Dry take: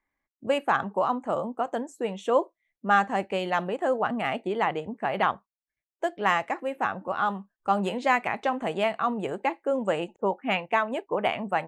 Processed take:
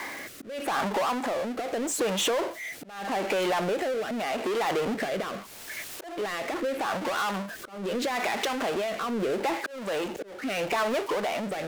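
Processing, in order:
high-pass filter 130 Hz 12 dB per octave
power curve on the samples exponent 0.35
brickwall limiter −14.5 dBFS, peak gain reduction 6 dB
bass and treble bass −11 dB, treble −1 dB
downward compressor 3 to 1, threshold −30 dBFS, peak gain reduction 10.5 dB
volume swells 293 ms
rotating-speaker cabinet horn 0.8 Hz
level +3.5 dB

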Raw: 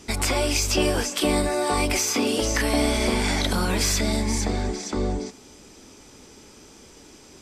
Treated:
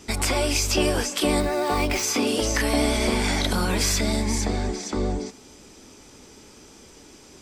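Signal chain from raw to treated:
0:01.40–0:02.03: running median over 5 samples
pitch vibrato 9.3 Hz 25 cents

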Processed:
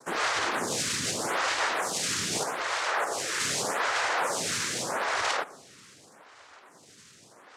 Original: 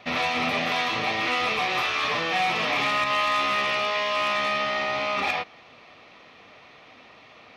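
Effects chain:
0:02.43–0:03.40: Chebyshev high-pass with heavy ripple 330 Hz, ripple 6 dB
cochlear-implant simulation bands 3
on a send at −18 dB: convolution reverb RT60 3.1 s, pre-delay 45 ms
on the sum: phaser with staggered stages 0.82 Hz

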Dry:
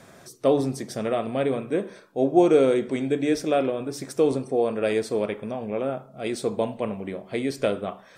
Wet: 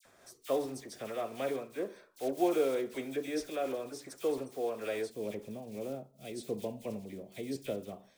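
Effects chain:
one scale factor per block 5 bits
all-pass dispersion lows, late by 54 ms, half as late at 2,000 Hz
parametric band 160 Hz −11.5 dB 1.4 octaves, from 0:05.10 1,300 Hz
amplitude modulation by smooth noise, depth 60%
level −7.5 dB

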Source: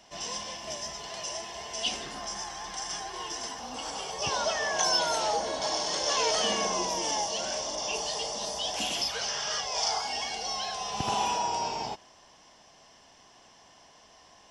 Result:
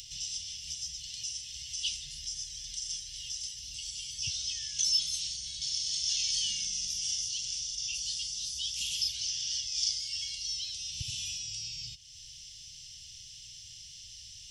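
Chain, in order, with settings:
inverse Chebyshev band-stop filter 320–1,200 Hz, stop band 60 dB
upward compression, threshold −36 dBFS

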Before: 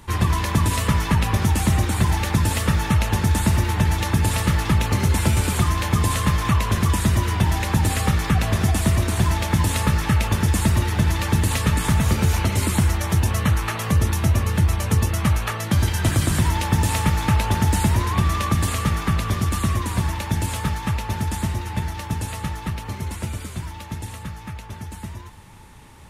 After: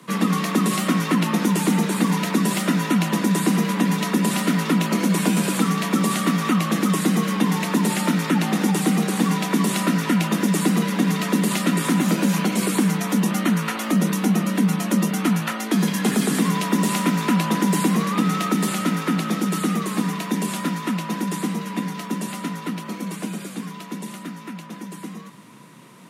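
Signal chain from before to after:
frequency shifter +110 Hz
low-shelf EQ 91 Hz −8.5 dB

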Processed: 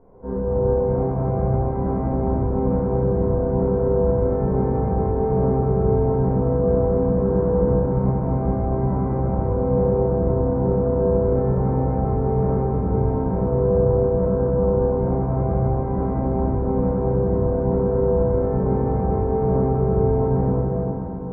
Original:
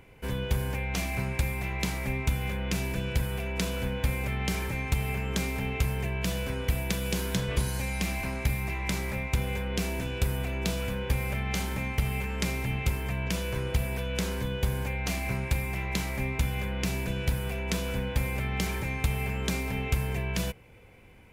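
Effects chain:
Butterworth low-pass 1,200 Hz 36 dB per octave
parametric band 410 Hz +7.5 dB 2 octaves
echo with a time of its own for lows and highs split 490 Hz, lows 113 ms, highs 337 ms, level −7 dB
convolution reverb RT60 3.3 s, pre-delay 4 ms, DRR −11 dB
level −6 dB

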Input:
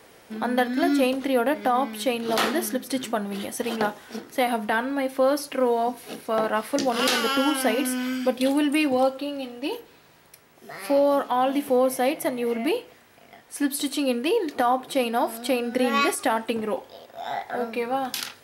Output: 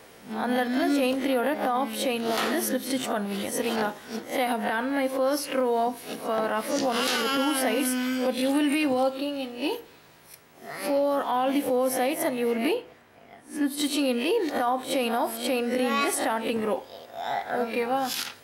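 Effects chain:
peak hold with a rise ahead of every peak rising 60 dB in 0.31 s
brickwall limiter −16.5 dBFS, peak gain reduction 6.5 dB
0:12.73–0:13.77: high-shelf EQ 4,000 Hz → 2,000 Hz −10.5 dB

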